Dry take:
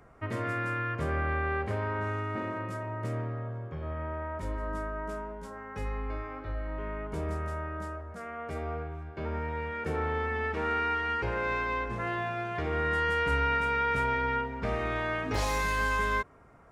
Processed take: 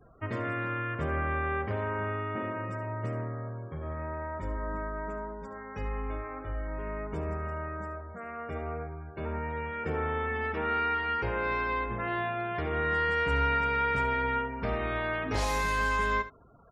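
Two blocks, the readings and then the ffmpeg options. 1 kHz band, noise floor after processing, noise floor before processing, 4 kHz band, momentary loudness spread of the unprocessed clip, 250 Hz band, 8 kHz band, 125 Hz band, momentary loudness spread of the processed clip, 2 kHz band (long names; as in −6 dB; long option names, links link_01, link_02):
+0.5 dB, −43 dBFS, −43 dBFS, 0.0 dB, 11 LU, 0.0 dB, can't be measured, −0.5 dB, 12 LU, 0.0 dB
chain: -filter_complex "[0:a]afftfilt=real='re*gte(hypot(re,im),0.00316)':imag='im*gte(hypot(re,im),0.00316)':win_size=1024:overlap=0.75,asplit=2[link_01][link_02];[link_02]aecho=0:1:72:0.2[link_03];[link_01][link_03]amix=inputs=2:normalize=0"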